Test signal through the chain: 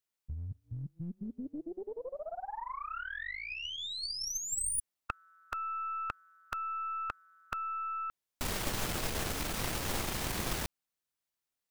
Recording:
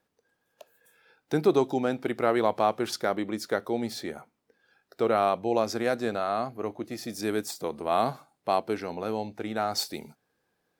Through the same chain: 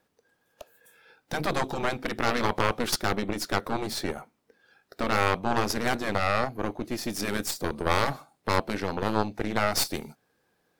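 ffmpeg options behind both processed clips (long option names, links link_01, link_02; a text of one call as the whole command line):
ffmpeg -i in.wav -af "afftfilt=real='re*lt(hypot(re,im),0.251)':imag='im*lt(hypot(re,im),0.251)':win_size=1024:overlap=0.75,aeval=exprs='0.2*(cos(1*acos(clip(val(0)/0.2,-1,1)))-cos(1*PI/2))+0.0891*(cos(4*acos(clip(val(0)/0.2,-1,1)))-cos(4*PI/2))':channel_layout=same,volume=4.5dB" out.wav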